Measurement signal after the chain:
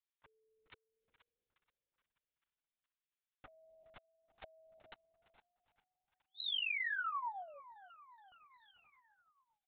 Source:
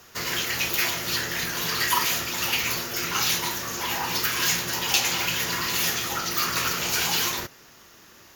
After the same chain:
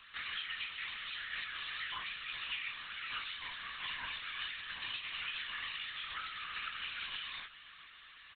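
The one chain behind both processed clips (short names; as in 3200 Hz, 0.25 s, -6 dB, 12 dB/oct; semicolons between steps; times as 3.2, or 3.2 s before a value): Bessel high-pass 1700 Hz, order 8; comb 5.4 ms, depth 92%; compressor 6:1, threshold -34 dBFS; frequency-shifting echo 0.425 s, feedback 59%, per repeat +30 Hz, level -18 dB; LPC vocoder at 8 kHz whisper; gain -1.5 dB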